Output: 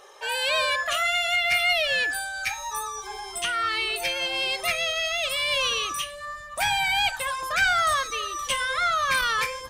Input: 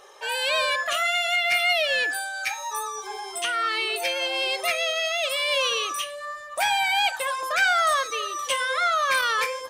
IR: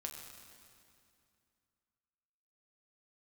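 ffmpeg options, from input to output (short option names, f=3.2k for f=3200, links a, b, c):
-af "asubboost=boost=10:cutoff=150"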